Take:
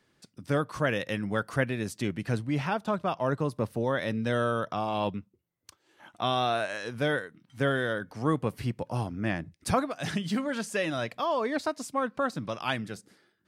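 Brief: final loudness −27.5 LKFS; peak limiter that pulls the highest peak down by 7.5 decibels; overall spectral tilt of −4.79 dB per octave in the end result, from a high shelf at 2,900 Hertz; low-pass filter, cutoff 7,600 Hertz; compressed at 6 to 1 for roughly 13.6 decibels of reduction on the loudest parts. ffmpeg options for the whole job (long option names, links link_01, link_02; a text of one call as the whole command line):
ffmpeg -i in.wav -af "lowpass=7600,highshelf=frequency=2900:gain=5.5,acompressor=threshold=-36dB:ratio=6,volume=14dB,alimiter=limit=-16dB:level=0:latency=1" out.wav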